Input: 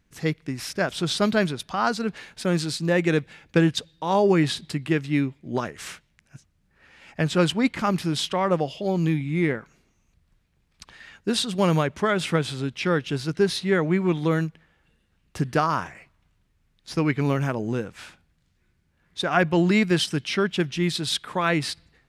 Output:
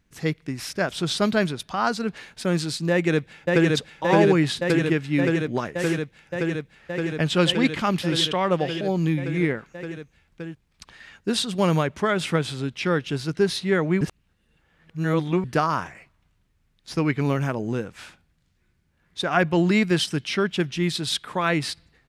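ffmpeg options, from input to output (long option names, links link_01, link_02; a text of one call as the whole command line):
ffmpeg -i in.wav -filter_complex "[0:a]asplit=2[link_01][link_02];[link_02]afade=type=in:start_time=2.9:duration=0.01,afade=type=out:start_time=3.71:duration=0.01,aecho=0:1:570|1140|1710|2280|2850|3420|3990|4560|5130|5700|6270|6840:0.891251|0.757563|0.643929|0.547339|0.465239|0.395453|0.336135|0.285715|0.242857|0.206429|0.175464|0.149145[link_03];[link_01][link_03]amix=inputs=2:normalize=0,asettb=1/sr,asplit=3[link_04][link_05][link_06];[link_04]atrim=end=7.224[link_07];[link_05]atrim=start=7.22:end=8.81,asetpts=PTS-STARTPTS,afade=type=in:duration=0.004:curve=qsin,afade=type=out:start_time=1.586:duration=0.004:curve=qsin,equalizer=frequency=3200:width=2:gain=7[link_08];[link_06]atrim=start=8.806[link_09];[link_07][link_08]acrossfade=duration=0.004:curve1=hsin:curve2=qsin[link_10];[link_10][link_09]acrossfade=duration=0.004:curve1=qsin:curve2=hsin,asplit=3[link_11][link_12][link_13];[link_11]atrim=end=14.012[link_14];[link_12]atrim=start=14.008:end=15.442,asetpts=PTS-STARTPTS,areverse[link_15];[link_13]atrim=start=15.438[link_16];[link_14][link_15]acrossfade=duration=0.004:curve1=hsin:curve2=hsin[link_17];[link_17][link_16]acrossfade=duration=0.004:curve1=hsin:curve2=hsin" out.wav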